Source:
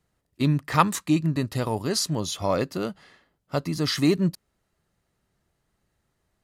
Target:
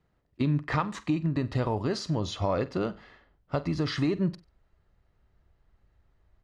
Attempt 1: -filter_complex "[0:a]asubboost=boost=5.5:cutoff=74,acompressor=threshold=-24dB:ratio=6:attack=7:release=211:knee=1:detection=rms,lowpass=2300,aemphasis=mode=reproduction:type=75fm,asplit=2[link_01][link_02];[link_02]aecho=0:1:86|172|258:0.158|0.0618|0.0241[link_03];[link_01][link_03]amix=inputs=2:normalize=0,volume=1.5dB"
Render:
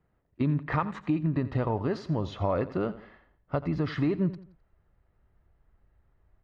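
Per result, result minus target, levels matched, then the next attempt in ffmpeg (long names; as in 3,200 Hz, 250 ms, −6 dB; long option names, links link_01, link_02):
echo 39 ms late; 8,000 Hz band −15.5 dB
-filter_complex "[0:a]asubboost=boost=5.5:cutoff=74,acompressor=threshold=-24dB:ratio=6:attack=7:release=211:knee=1:detection=rms,lowpass=2300,aemphasis=mode=reproduction:type=75fm,asplit=2[link_01][link_02];[link_02]aecho=0:1:47|94|141:0.158|0.0618|0.0241[link_03];[link_01][link_03]amix=inputs=2:normalize=0,volume=1.5dB"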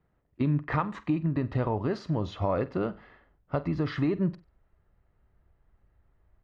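8,000 Hz band −15.5 dB
-filter_complex "[0:a]asubboost=boost=5.5:cutoff=74,acompressor=threshold=-24dB:ratio=6:attack=7:release=211:knee=1:detection=rms,lowpass=6300,aemphasis=mode=reproduction:type=75fm,asplit=2[link_01][link_02];[link_02]aecho=0:1:47|94|141:0.158|0.0618|0.0241[link_03];[link_01][link_03]amix=inputs=2:normalize=0,volume=1.5dB"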